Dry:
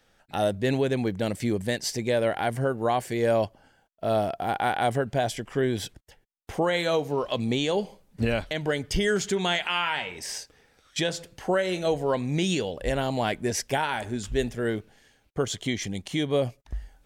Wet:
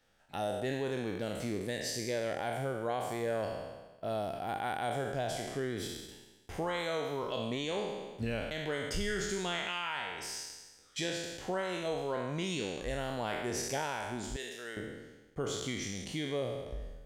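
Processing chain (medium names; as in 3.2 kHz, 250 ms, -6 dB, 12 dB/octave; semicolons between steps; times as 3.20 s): spectral sustain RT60 1.17 s; 14.36–14.77 s: high-pass 1.4 kHz 6 dB/octave; compression 1.5:1, threshold -27 dBFS, peak gain reduction 4 dB; trim -9 dB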